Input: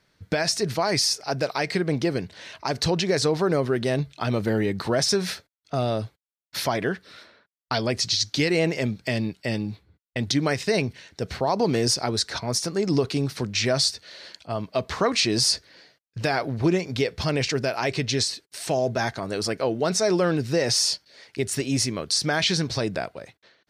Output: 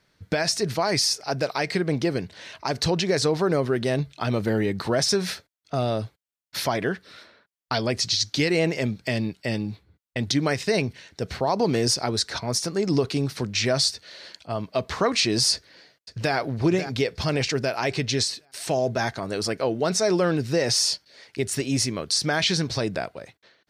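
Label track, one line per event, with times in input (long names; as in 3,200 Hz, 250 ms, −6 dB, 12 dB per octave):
15.530000	16.350000	delay throw 540 ms, feedback 35%, level −10.5 dB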